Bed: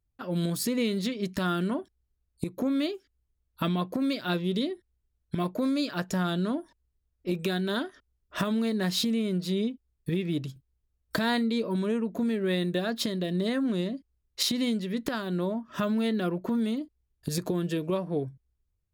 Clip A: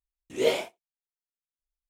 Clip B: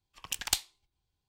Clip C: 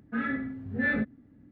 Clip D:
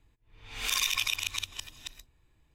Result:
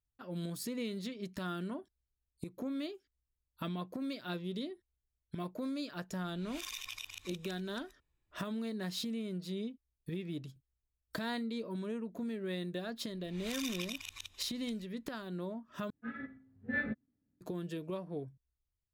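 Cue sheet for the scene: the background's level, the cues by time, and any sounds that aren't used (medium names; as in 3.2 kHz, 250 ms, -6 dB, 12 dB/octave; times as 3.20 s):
bed -11 dB
5.91 s: add D -15 dB
12.82 s: add D -13 dB
15.90 s: replace with C -6 dB + upward expansion 2.5:1, over -37 dBFS
not used: A, B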